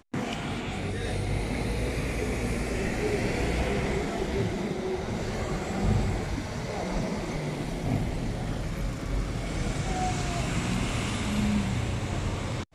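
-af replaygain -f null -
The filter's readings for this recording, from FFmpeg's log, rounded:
track_gain = +13.1 dB
track_peak = 0.138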